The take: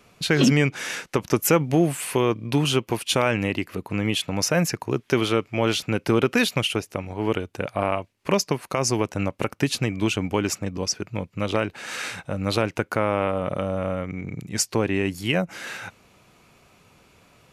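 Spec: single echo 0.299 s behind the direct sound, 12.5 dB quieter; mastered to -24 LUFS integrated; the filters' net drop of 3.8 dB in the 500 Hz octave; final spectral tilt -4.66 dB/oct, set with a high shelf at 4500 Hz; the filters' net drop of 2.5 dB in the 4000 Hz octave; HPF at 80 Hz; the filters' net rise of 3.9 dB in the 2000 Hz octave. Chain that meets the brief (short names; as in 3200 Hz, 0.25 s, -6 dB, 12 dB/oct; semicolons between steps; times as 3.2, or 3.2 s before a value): HPF 80 Hz; bell 500 Hz -5 dB; bell 2000 Hz +7.5 dB; bell 4000 Hz -5 dB; high shelf 4500 Hz -3.5 dB; echo 0.299 s -12.5 dB; gain +1 dB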